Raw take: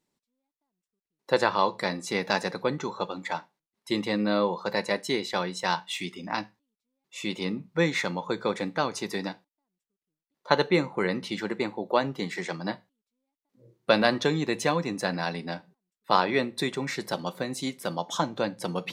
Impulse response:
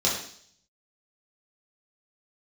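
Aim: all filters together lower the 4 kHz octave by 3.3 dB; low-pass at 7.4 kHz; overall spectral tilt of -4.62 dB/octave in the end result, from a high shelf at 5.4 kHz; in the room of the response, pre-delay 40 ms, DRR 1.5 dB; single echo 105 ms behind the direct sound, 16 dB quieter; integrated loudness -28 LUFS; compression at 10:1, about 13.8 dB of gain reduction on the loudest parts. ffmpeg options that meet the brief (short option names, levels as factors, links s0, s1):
-filter_complex "[0:a]lowpass=7400,equalizer=f=4000:t=o:g=-5,highshelf=f=5400:g=4,acompressor=threshold=0.0282:ratio=10,aecho=1:1:105:0.158,asplit=2[s0][s1];[1:a]atrim=start_sample=2205,adelay=40[s2];[s1][s2]afir=irnorm=-1:irlink=0,volume=0.211[s3];[s0][s3]amix=inputs=2:normalize=0,volume=2"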